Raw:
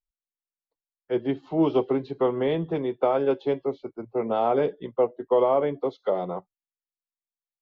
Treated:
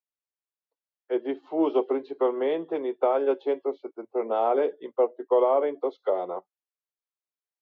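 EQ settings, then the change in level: high-pass 310 Hz 24 dB/octave; treble shelf 3.4 kHz -10 dB; 0.0 dB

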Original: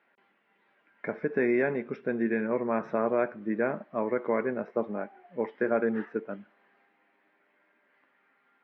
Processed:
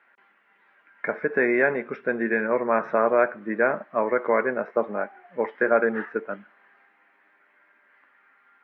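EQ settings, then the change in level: high-pass 100 Hz; dynamic bell 560 Hz, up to +5 dB, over -38 dBFS, Q 1.4; peaking EQ 1.5 kHz +11.5 dB 1.8 oct; -1.0 dB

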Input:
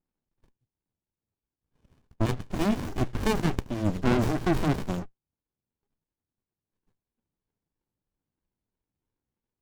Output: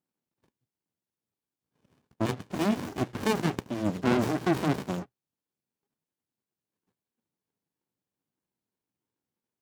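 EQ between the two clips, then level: high-pass 150 Hz 12 dB/octave; 0.0 dB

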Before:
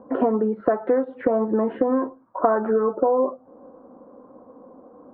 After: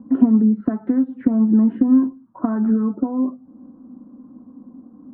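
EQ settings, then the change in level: resonant low shelf 350 Hz +12 dB, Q 3; -8.0 dB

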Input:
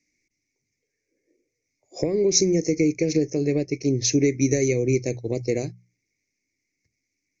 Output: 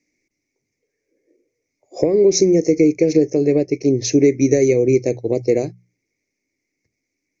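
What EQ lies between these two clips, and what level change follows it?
peaking EQ 540 Hz +10 dB 2.8 oct; -1.0 dB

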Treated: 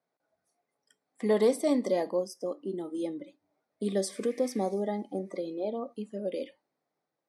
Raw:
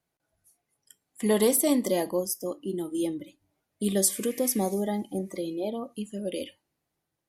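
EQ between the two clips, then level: treble shelf 2 kHz -11 dB; dynamic bell 750 Hz, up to -4 dB, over -35 dBFS, Q 0.73; cabinet simulation 330–7900 Hz, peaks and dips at 340 Hz -6 dB, 960 Hz -3 dB, 1.6 kHz -3 dB, 2.9 kHz -10 dB, 7 kHz -10 dB; +5.0 dB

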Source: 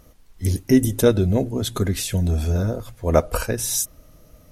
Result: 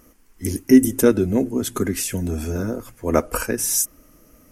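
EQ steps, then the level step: resonant low shelf 190 Hz -9.5 dB, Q 1.5; peaking EQ 630 Hz -8.5 dB 1.1 oct; peaking EQ 3.8 kHz -13 dB 0.55 oct; +4.0 dB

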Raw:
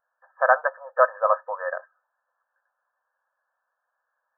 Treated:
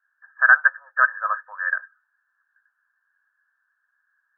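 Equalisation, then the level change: resonant high-pass 1.6 kHz, resonance Q 6.1; -3.5 dB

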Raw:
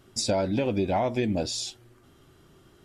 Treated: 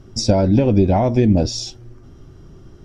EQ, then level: tilt EQ -3.5 dB/octave; peaking EQ 5.6 kHz +14 dB 0.4 oct; +5.0 dB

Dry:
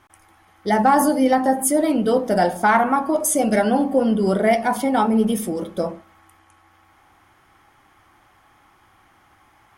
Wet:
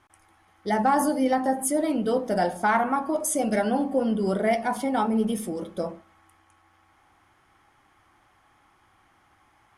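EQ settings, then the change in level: low-pass 12 kHz 24 dB/octave; -6.0 dB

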